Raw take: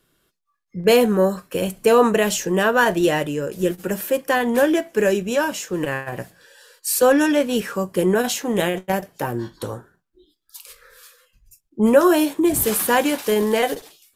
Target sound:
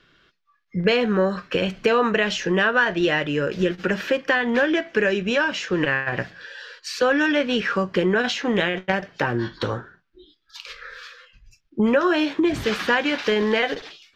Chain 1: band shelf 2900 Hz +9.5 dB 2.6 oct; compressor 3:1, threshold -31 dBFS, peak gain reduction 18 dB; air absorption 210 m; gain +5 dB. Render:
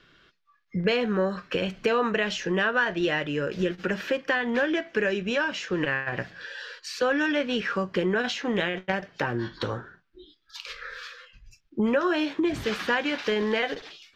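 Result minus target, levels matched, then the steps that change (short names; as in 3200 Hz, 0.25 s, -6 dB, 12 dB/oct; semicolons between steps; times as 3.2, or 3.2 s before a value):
compressor: peak gain reduction +5 dB
change: compressor 3:1, threshold -23.5 dBFS, peak gain reduction 13 dB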